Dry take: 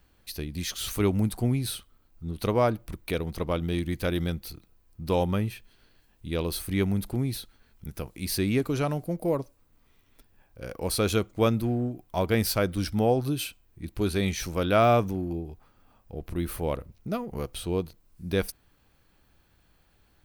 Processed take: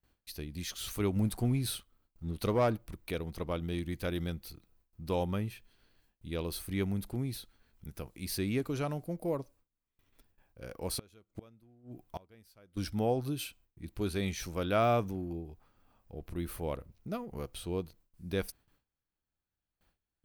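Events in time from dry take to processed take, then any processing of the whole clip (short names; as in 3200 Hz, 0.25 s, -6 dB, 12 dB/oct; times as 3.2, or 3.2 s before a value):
1.16–2.78 sample leveller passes 1
10.97–12.77 flipped gate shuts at -20 dBFS, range -28 dB
whole clip: gate with hold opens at -51 dBFS; gain -7 dB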